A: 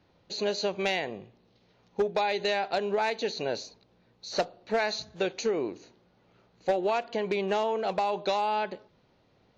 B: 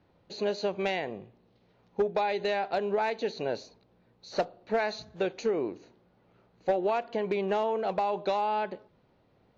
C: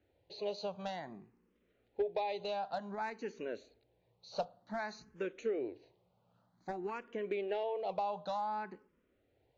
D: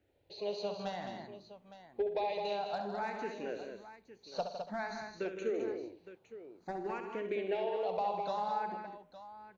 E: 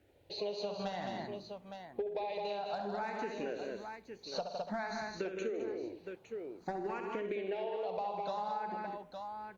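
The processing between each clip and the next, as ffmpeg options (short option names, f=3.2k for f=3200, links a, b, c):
-af "highshelf=f=3.3k:g=-11.5"
-filter_complex "[0:a]asplit=2[a][b];[b]afreqshift=0.54[c];[a][c]amix=inputs=2:normalize=1,volume=-6.5dB"
-af "aecho=1:1:68|116|158|210|286|863:0.398|0.133|0.316|0.473|0.133|0.2"
-af "acompressor=threshold=-42dB:ratio=6,volume=7dB" -ar 48000 -c:a libopus -b:a 48k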